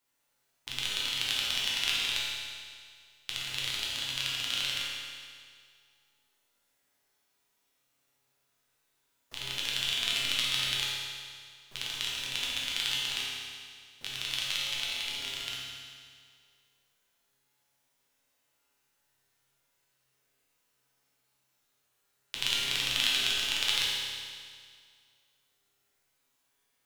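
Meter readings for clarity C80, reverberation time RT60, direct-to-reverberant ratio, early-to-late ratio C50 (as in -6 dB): 0.0 dB, 2.0 s, -6.0 dB, -2.0 dB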